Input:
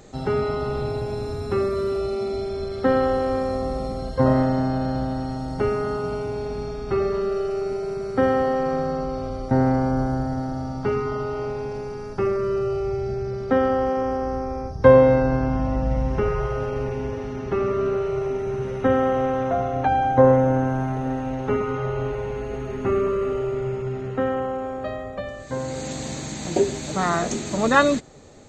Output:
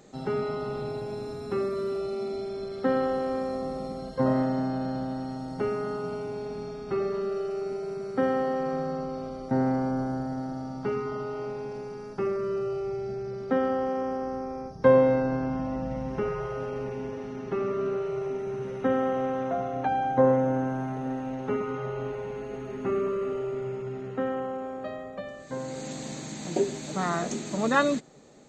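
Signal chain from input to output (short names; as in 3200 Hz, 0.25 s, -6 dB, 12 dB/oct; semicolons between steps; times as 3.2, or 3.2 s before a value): resonant low shelf 120 Hz -10 dB, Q 1.5; gain -6.5 dB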